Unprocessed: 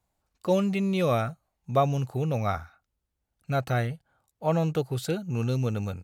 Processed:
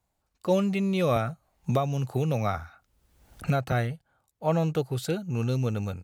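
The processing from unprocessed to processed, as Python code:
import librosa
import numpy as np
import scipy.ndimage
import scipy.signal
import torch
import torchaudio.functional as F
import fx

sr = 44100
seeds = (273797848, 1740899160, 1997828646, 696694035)

y = fx.band_squash(x, sr, depth_pct=100, at=(1.16, 3.72))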